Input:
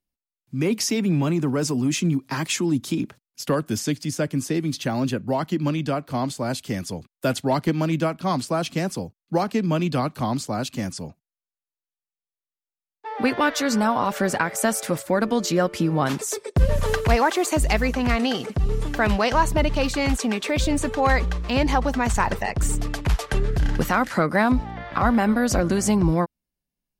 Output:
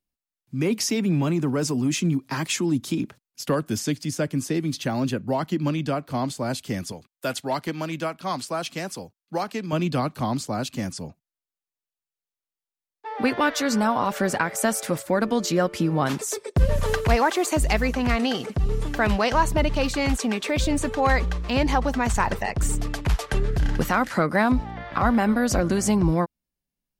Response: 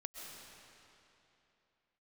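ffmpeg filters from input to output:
-filter_complex "[0:a]asettb=1/sr,asplit=3[link_01][link_02][link_03];[link_01]atrim=end=6.924[link_04];[link_02]atrim=start=6.92:end=9.73,asetpts=PTS-STARTPTS,afade=type=in:duration=0.004:curve=qsin,afade=type=out:start_time=2.806:duration=0.004:curve=qsin,lowshelf=frequency=420:gain=-10[link_05];[link_03]atrim=start=9.726[link_06];[link_04][link_05]acrossfade=duration=0.004:curve1=hsin:curve2=qsin[link_07];[link_07][link_06]acrossfade=duration=0.004:curve1=qsin:curve2=hsin,volume=-1dB"

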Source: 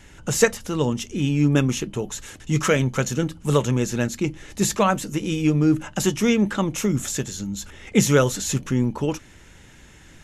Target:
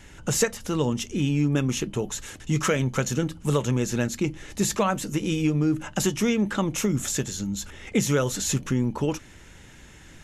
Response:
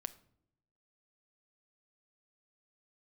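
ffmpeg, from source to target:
-af "acompressor=threshold=-20dB:ratio=3"

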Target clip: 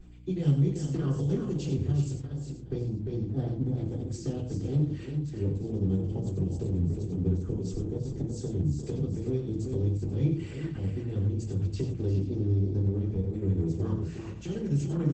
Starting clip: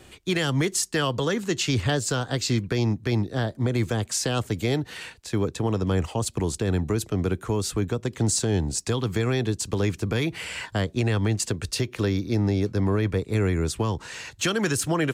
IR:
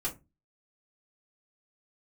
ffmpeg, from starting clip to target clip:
-filter_complex "[0:a]asettb=1/sr,asplit=3[link_01][link_02][link_03];[link_01]atrim=end=10.104[link_04];[link_02]atrim=start=10.1:end=10.79,asetpts=PTS-STARTPTS,afade=type=in:duration=0.004:curve=qsin,afade=type=out:start_time=0.686:duration=0.004:curve=qsin,agate=range=-33dB:threshold=-39dB:ratio=3:detection=peak[link_05];[link_03]atrim=start=10.786[link_06];[link_04][link_05]acrossfade=duration=0.004:curve1=hsin:curve2=qsin[link_07];[link_07][link_06]acrossfade=duration=0.004:curve1=qsin:curve2=hsin,afwtdn=0.0562,acrossover=split=230|3000[link_08][link_09][link_10];[link_09]acompressor=threshold=-38dB:ratio=4[link_11];[link_08][link_11][link_10]amix=inputs=3:normalize=0,equalizer=frequency=740:width_type=o:width=0.61:gain=-4,alimiter=limit=-24dB:level=0:latency=1:release=324,asettb=1/sr,asplit=3[link_12][link_13][link_14];[link_12]atrim=end=2.064[link_15];[link_13]atrim=start=2.06:end=2.72,asetpts=PTS-STARTPTS,afade=type=in:duration=0.004:curve=qsin,afade=type=out:start_time=0.656:duration=0.004:curve=qsin,acompressor=threshold=-41dB:ratio=16[link_16];[link_14]atrim=start=2.716[link_17];[link_15][link_16]acrossfade=duration=0.004:curve1=hsin:curve2=qsin[link_18];[link_18][link_17]acrossfade=duration=0.004:curve1=qsin:curve2=hsin,asplit=3[link_19][link_20][link_21];[link_19]afade=type=out:start_time=7.36:duration=0.02[link_22];[link_20]adynamicequalizer=threshold=0.00112:dfrequency=5600:dqfactor=1.5:tfrequency=5600:tqfactor=1.5:attack=5:release=100:ratio=0.375:range=1.5:mode=boostabove:tftype=bell,afade=type=in:start_time=7.36:duration=0.02,afade=type=out:start_time=8.03:duration=0.02[link_23];[link_21]afade=type=in:start_time=8.03:duration=0.02[link_24];[link_22][link_23][link_24]amix=inputs=3:normalize=0,tremolo=f=4.4:d=0.52,aeval=exprs='val(0)+0.00282*(sin(2*PI*60*n/s)+sin(2*PI*2*60*n/s)/2+sin(2*PI*3*60*n/s)/3+sin(2*PI*4*60*n/s)/4+sin(2*PI*5*60*n/s)/5)':channel_layout=same,aecho=1:1:51|91|352|391|487:0.106|0.398|0.335|0.355|0.158[link_25];[1:a]atrim=start_sample=2205,afade=type=out:start_time=0.19:duration=0.01,atrim=end_sample=8820[link_26];[link_25][link_26]afir=irnorm=-1:irlink=0" -ar 48000 -c:a libopus -b:a 12k

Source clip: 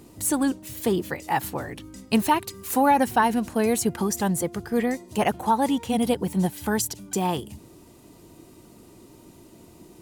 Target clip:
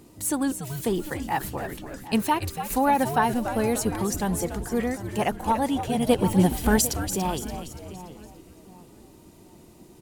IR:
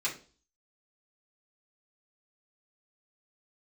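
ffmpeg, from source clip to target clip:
-filter_complex "[0:a]asplit=2[link_01][link_02];[link_02]adelay=749,lowpass=frequency=2000:poles=1,volume=-15dB,asplit=2[link_03][link_04];[link_04]adelay=749,lowpass=frequency=2000:poles=1,volume=0.37,asplit=2[link_05][link_06];[link_06]adelay=749,lowpass=frequency=2000:poles=1,volume=0.37[link_07];[link_03][link_05][link_07]amix=inputs=3:normalize=0[link_08];[link_01][link_08]amix=inputs=2:normalize=0,asettb=1/sr,asplit=3[link_09][link_10][link_11];[link_09]atrim=end=6.094[link_12];[link_10]atrim=start=6.09:end=6.97,asetpts=PTS-STARTPTS,afade=type=in:duration=0.004:curve=qsin,afade=type=out:start_time=0.876:duration=0.004:curve=qsin,acontrast=61[link_13];[link_11]atrim=start=6.966[link_14];[link_12][link_13]acrossfade=duration=0.004:curve1=hsin:curve2=qsin[link_15];[link_15][link_14]acrossfade=duration=0.004:curve1=qsin:curve2=hsin,asplit=2[link_16][link_17];[link_17]asplit=5[link_18][link_19][link_20][link_21][link_22];[link_18]adelay=287,afreqshift=-130,volume=-9dB[link_23];[link_19]adelay=574,afreqshift=-260,volume=-15.7dB[link_24];[link_20]adelay=861,afreqshift=-390,volume=-22.5dB[link_25];[link_21]adelay=1148,afreqshift=-520,volume=-29.2dB[link_26];[link_22]adelay=1435,afreqshift=-650,volume=-36dB[link_27];[link_23][link_24][link_25][link_26][link_27]amix=inputs=5:normalize=0[link_28];[link_16][link_28]amix=inputs=2:normalize=0,volume=-2.5dB"

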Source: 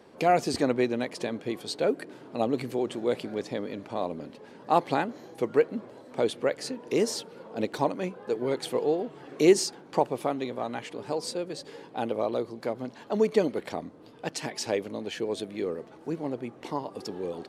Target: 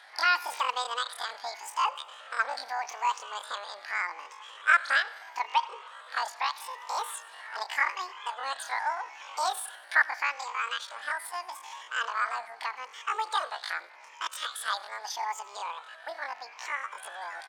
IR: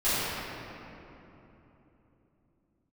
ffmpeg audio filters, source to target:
-filter_complex "[0:a]afftfilt=real='re*pow(10,9/40*sin(2*PI*(0.75*log(max(b,1)*sr/1024/100)/log(2)-(0.81)*(pts-256)/sr)))':imag='im*pow(10,9/40*sin(2*PI*(0.75*log(max(b,1)*sr/1024/100)/log(2)-(0.81)*(pts-256)/sr)))':win_size=1024:overlap=0.75,highpass=500,lowpass=4800,asplit=2[link_01][link_02];[link_02]acompressor=threshold=-43dB:ratio=5,volume=-2dB[link_03];[link_01][link_03]amix=inputs=2:normalize=0,equalizer=frequency=1200:width=0.43:gain=10,asplit=2[link_04][link_05];[link_05]aecho=0:1:90|180|270|360|450:0.0841|0.0496|0.0293|0.0173|0.0102[link_06];[link_04][link_06]amix=inputs=2:normalize=0,asetrate=88200,aresample=44100,atempo=0.5,volume=-7.5dB"

